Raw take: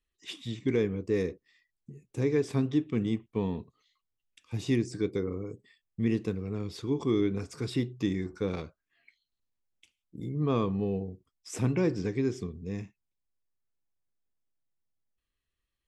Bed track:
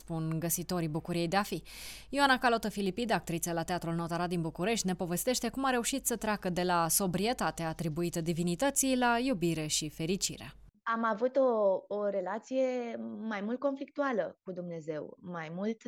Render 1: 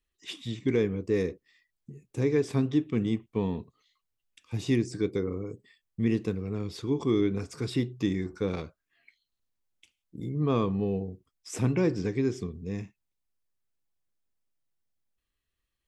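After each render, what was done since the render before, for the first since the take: trim +1.5 dB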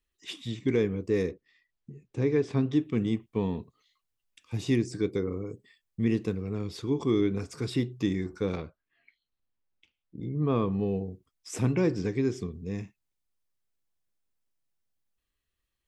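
1.31–2.71 s: distance through air 100 m; 8.57–10.72 s: distance through air 210 m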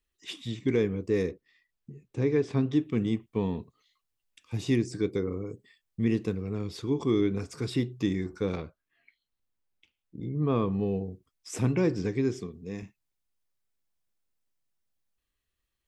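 12.39–12.83 s: high-pass 210 Hz 6 dB/octave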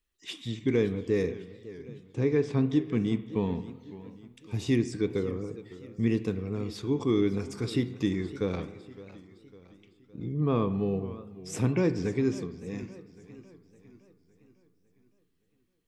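spring tank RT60 1.3 s, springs 34/45 ms, chirp 40 ms, DRR 13.5 dB; modulated delay 558 ms, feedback 48%, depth 157 cents, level -17 dB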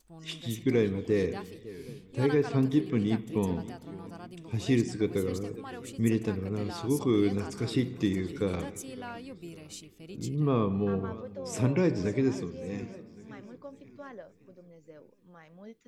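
add bed track -13.5 dB

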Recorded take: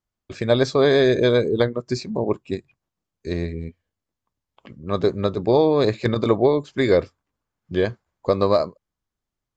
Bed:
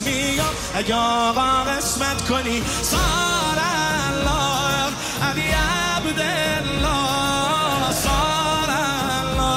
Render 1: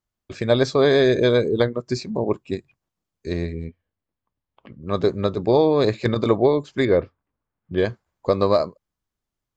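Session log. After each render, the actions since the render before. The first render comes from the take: 3.67–4.83 s: distance through air 220 m; 6.85–7.78 s: distance through air 380 m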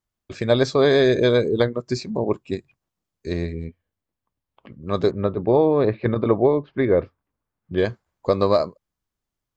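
5.11–6.98 s: Gaussian low-pass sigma 3.2 samples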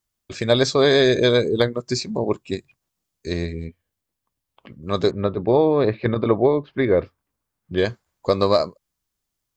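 treble shelf 3 kHz +9.5 dB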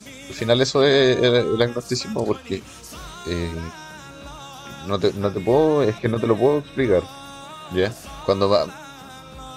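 add bed -18 dB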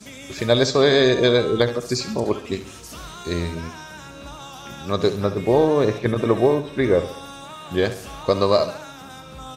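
feedback delay 69 ms, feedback 47%, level -13 dB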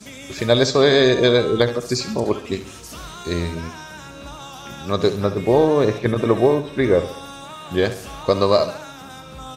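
trim +1.5 dB

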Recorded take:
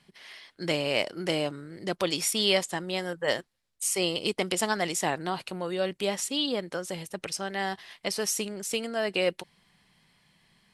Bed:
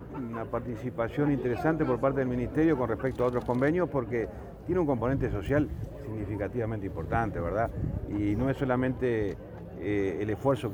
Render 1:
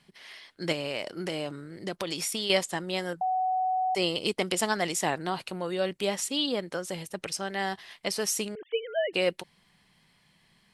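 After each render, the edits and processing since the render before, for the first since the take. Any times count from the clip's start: 0.72–2.50 s: compression, threshold -27 dBFS; 3.21–3.95 s: bleep 746 Hz -24 dBFS; 8.55–9.13 s: formants replaced by sine waves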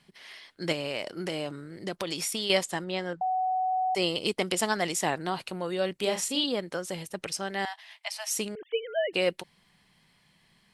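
2.84–3.72 s: distance through air 110 m; 6.00–6.44 s: doubling 38 ms -6 dB; 7.65–8.31 s: rippled Chebyshev high-pass 620 Hz, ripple 6 dB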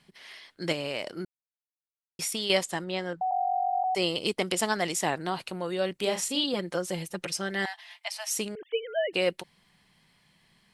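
1.25–2.19 s: mute; 3.31–3.84 s: formants replaced by sine waves; 6.53–8.07 s: comb 5.7 ms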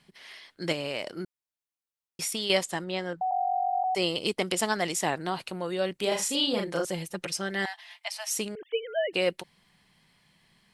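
6.08–6.85 s: doubling 36 ms -3 dB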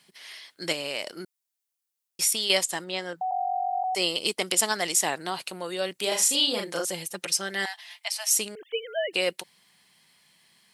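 high-pass 320 Hz 6 dB/octave; treble shelf 4.2 kHz +11 dB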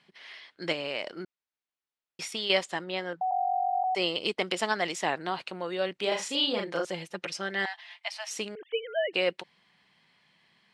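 low-pass 3 kHz 12 dB/octave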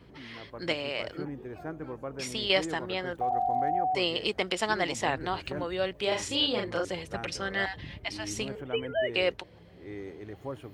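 add bed -12 dB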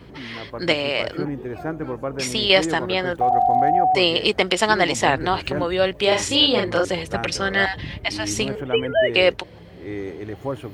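trim +10.5 dB; peak limiter -2 dBFS, peak gain reduction 1.5 dB

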